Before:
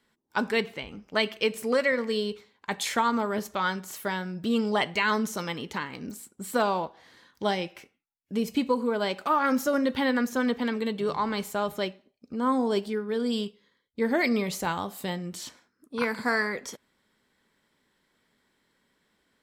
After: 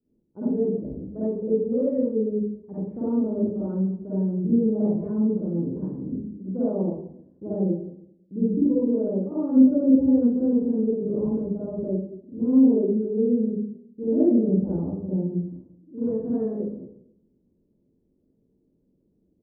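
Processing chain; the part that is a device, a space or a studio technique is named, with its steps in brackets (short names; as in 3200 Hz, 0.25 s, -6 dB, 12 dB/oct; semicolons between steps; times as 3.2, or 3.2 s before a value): next room (LPF 420 Hz 24 dB/oct; reverb RT60 0.65 s, pre-delay 44 ms, DRR -10.5 dB); gain -3.5 dB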